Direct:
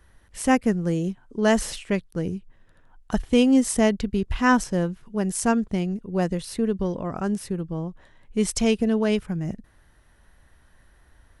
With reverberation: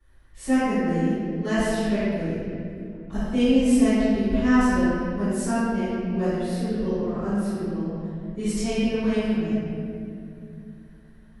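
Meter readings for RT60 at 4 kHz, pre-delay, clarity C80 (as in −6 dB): 1.6 s, 3 ms, −2.5 dB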